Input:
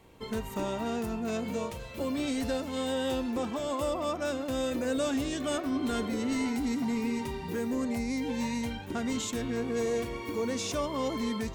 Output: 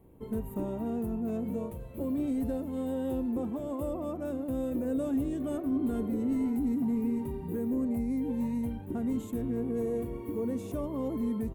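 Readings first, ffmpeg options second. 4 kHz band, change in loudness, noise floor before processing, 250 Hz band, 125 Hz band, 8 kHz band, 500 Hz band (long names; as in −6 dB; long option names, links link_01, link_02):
below −20 dB, −0.5 dB, −41 dBFS, +1.5 dB, +1.5 dB, below −15 dB, −3.0 dB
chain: -af "firequalizer=gain_entry='entry(320,0);entry(500,-5);entry(1400,-16);entry(5200,-28);entry(11000,-3)':delay=0.05:min_phase=1,volume=1.5dB"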